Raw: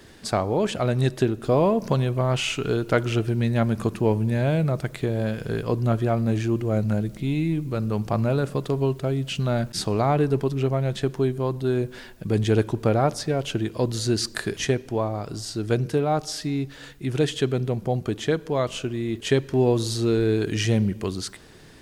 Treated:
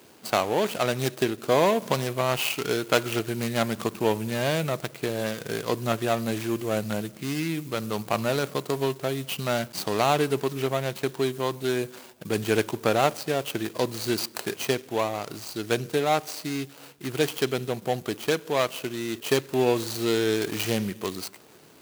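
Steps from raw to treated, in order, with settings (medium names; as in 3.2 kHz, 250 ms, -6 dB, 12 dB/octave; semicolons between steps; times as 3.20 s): median filter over 25 samples; high-pass 94 Hz; tilt EQ +4 dB/octave; trim +3.5 dB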